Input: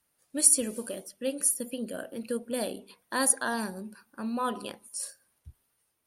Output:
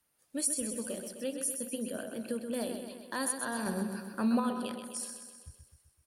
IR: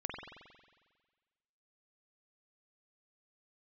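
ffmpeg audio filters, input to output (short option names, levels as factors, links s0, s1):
-filter_complex "[0:a]acrossover=split=220[s0][s1];[s1]acompressor=threshold=0.0178:ratio=2[s2];[s0][s2]amix=inputs=2:normalize=0,asettb=1/sr,asplit=3[s3][s4][s5];[s3]atrim=end=2.354[s6];[s4]atrim=start=2.35:end=3.16,asetpts=PTS-STARTPTS,afade=t=in:d=0.004:c=qsin,afade=t=out:st=0.806:d=0.004:c=qsin,asoftclip=type=hard:threshold=0.0501[s7];[s5]atrim=start=3.156[s8];[s6][s7]acrossfade=d=0.004:c1=hsin:c2=qsin[s9];[s9][s8]acrossfade=d=0.004:c1=qsin:c2=hsin,asettb=1/sr,asplit=3[s10][s11][s12];[s10]atrim=end=3.664[s13];[s11]atrim=start=3.66:end=4.4,asetpts=PTS-STARTPTS,afade=t=in:d=0.004:c=qsin,afade=t=out:st=0.736:d=0.004:c=qsin,acontrast=73[s14];[s12]atrim=start=4.396[s15];[s13][s14]acrossfade=d=0.004:c1=hsin:c2=qsin[s16];[s16][s15]acrossfade=d=0.004:c1=qsin:c2=hsin,asplit=2[s17][s18];[s18]aecho=0:1:128|256|384|512|640|768|896|1024:0.422|0.249|0.147|0.0866|0.0511|0.0301|0.0178|0.0105[s19];[s17][s19]amix=inputs=2:normalize=0,volume=0.841"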